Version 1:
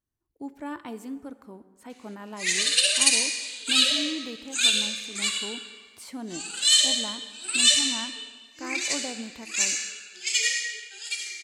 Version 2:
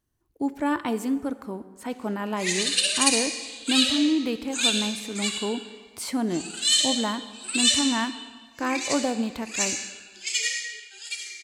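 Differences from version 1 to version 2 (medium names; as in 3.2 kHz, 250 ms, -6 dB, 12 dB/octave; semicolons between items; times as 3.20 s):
speech +10.5 dB; background: send -10.0 dB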